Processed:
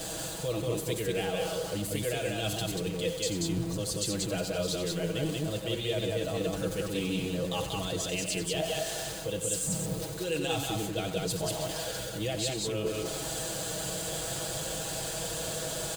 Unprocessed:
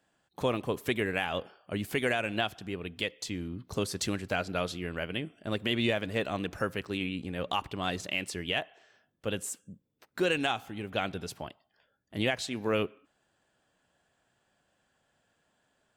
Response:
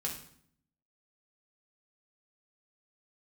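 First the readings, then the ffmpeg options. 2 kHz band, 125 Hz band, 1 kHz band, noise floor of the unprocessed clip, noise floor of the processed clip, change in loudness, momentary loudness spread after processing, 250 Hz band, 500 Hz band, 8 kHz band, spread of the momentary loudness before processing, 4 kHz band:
-4.5 dB, +5.0 dB, -2.5 dB, -75 dBFS, -37 dBFS, +0.5 dB, 3 LU, +1.0 dB, +2.5 dB, +11.5 dB, 9 LU, +2.5 dB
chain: -filter_complex "[0:a]aeval=exprs='val(0)+0.5*0.0112*sgn(val(0))':c=same,acrossover=split=220|1900[s0][s1][s2];[s1]alimiter=level_in=1.12:limit=0.0631:level=0:latency=1,volume=0.891[s3];[s0][s3][s2]amix=inputs=3:normalize=0,equalizer=f=250:t=o:w=1:g=-5,equalizer=f=500:t=o:w=1:g=8,equalizer=f=1000:t=o:w=1:g=-4,equalizer=f=2000:t=o:w=1:g=-8,equalizer=f=4000:t=o:w=1:g=4,equalizer=f=8000:t=o:w=1:g=8,areverse,acompressor=threshold=0.0126:ratio=6,areverse,aeval=exprs='val(0)*gte(abs(val(0)),0.00251)':c=same,equalizer=f=74:w=0.99:g=10,bandreject=f=5500:w=13,aeval=exprs='val(0)+0.00178*(sin(2*PI*50*n/s)+sin(2*PI*2*50*n/s)/2+sin(2*PI*3*50*n/s)/3+sin(2*PI*4*50*n/s)/4+sin(2*PI*5*50*n/s)/5)':c=same,aecho=1:1:6.2:0.87,aecho=1:1:90.38|186.6:0.316|0.794,volume=1.58"

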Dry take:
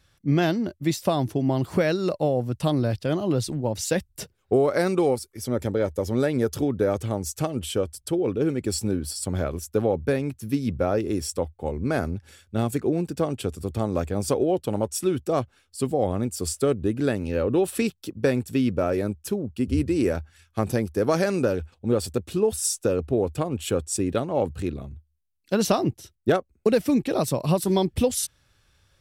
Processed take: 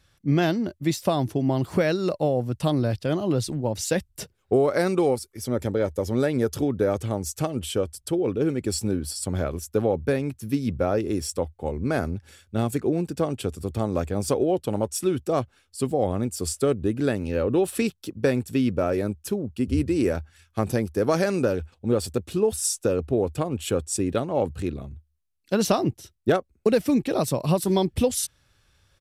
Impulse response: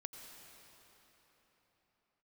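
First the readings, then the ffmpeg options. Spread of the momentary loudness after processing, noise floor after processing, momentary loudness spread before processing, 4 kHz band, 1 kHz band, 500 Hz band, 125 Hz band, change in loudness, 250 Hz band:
7 LU, -67 dBFS, 7 LU, 0.0 dB, 0.0 dB, 0.0 dB, 0.0 dB, 0.0 dB, 0.0 dB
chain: -af "aresample=32000,aresample=44100"

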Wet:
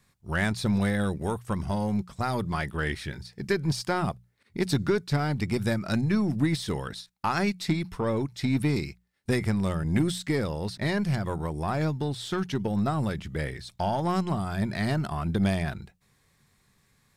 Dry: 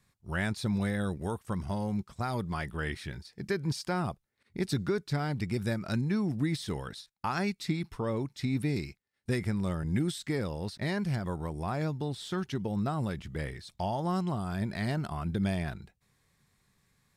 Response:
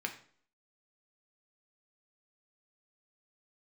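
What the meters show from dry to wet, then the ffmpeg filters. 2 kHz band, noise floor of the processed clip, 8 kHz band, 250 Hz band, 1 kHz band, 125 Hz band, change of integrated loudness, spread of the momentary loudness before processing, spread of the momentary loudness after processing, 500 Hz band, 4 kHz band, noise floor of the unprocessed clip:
+5.5 dB, -68 dBFS, +5.0 dB, +4.5 dB, +5.0 dB, +4.0 dB, +4.5 dB, 7 LU, 7 LU, +5.0 dB, +5.0 dB, -76 dBFS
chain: -af "aeval=exprs='0.133*(cos(1*acos(clip(val(0)/0.133,-1,1)))-cos(1*PI/2))+0.00668*(cos(4*acos(clip(val(0)/0.133,-1,1)))-cos(4*PI/2))+0.00944*(cos(6*acos(clip(val(0)/0.133,-1,1)))-cos(6*PI/2))+0.00075*(cos(8*acos(clip(val(0)/0.133,-1,1)))-cos(8*PI/2))':c=same,bandreject=f=60:t=h:w=6,bandreject=f=120:t=h:w=6,bandreject=f=180:t=h:w=6,volume=1.78"

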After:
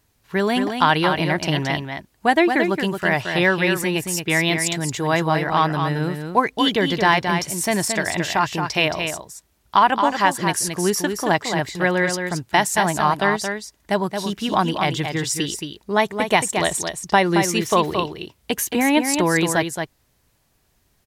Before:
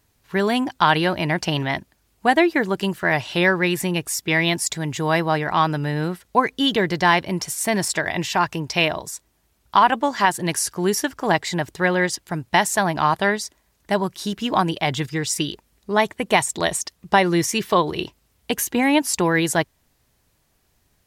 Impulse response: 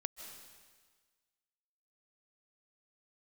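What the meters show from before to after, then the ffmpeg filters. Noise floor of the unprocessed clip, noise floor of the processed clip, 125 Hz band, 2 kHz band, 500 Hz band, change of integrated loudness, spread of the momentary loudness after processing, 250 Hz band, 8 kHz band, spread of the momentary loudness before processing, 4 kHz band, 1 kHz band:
-66 dBFS, -64 dBFS, +1.0 dB, +1.0 dB, +1.0 dB, +0.5 dB, 8 LU, +1.0 dB, +1.0 dB, 8 LU, +1.0 dB, +1.0 dB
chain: -af "aecho=1:1:223:0.473"

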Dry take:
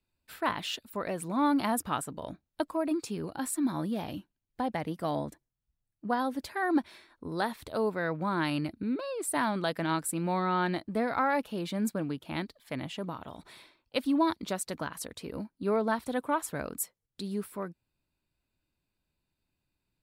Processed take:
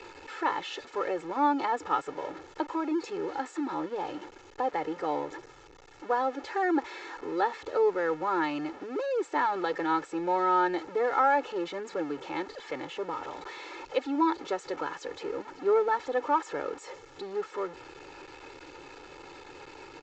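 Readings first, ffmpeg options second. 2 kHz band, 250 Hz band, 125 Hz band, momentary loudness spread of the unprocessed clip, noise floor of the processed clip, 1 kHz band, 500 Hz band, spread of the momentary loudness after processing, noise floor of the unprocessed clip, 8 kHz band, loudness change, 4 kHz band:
+1.0 dB, -2.5 dB, -14.0 dB, 12 LU, -52 dBFS, +4.5 dB, +4.0 dB, 21 LU, -85 dBFS, under -10 dB, +1.5 dB, -3.0 dB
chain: -filter_complex "[0:a]aeval=exprs='val(0)+0.5*0.0178*sgn(val(0))':c=same,acrossover=split=250 2100:gain=0.0708 1 0.251[s0][s1][s2];[s0][s1][s2]amix=inputs=3:normalize=0,aecho=1:1:2.3:0.9,aresample=16000,aresample=44100"

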